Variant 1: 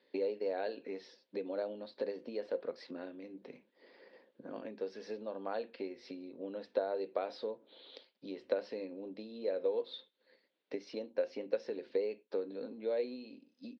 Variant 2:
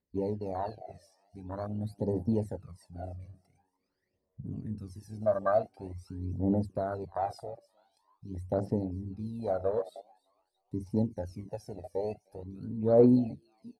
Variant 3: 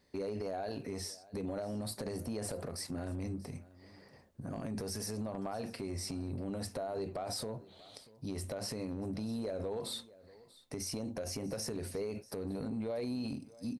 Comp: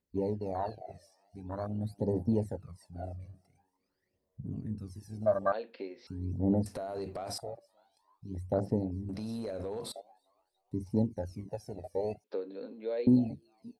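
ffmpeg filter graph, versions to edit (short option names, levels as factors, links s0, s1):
-filter_complex "[0:a]asplit=2[s0][s1];[2:a]asplit=2[s2][s3];[1:a]asplit=5[s4][s5][s6][s7][s8];[s4]atrim=end=5.522[s9];[s0]atrim=start=5.518:end=6.072[s10];[s5]atrim=start=6.068:end=6.662[s11];[s2]atrim=start=6.658:end=7.382[s12];[s6]atrim=start=7.378:end=9.092[s13];[s3]atrim=start=9.088:end=9.922[s14];[s7]atrim=start=9.918:end=12.242[s15];[s1]atrim=start=12.238:end=13.072[s16];[s8]atrim=start=13.068[s17];[s9][s10]acrossfade=d=0.004:c1=hsin:c2=hsin[s18];[s18][s11]acrossfade=d=0.004:c1=hsin:c2=hsin[s19];[s19][s12]acrossfade=d=0.004:c1=hsin:c2=hsin[s20];[s20][s13]acrossfade=d=0.004:c1=hsin:c2=hsin[s21];[s21][s14]acrossfade=d=0.004:c1=hsin:c2=hsin[s22];[s22][s15]acrossfade=d=0.004:c1=hsin:c2=hsin[s23];[s23][s16]acrossfade=d=0.004:c1=hsin:c2=hsin[s24];[s24][s17]acrossfade=d=0.004:c1=hsin:c2=hsin"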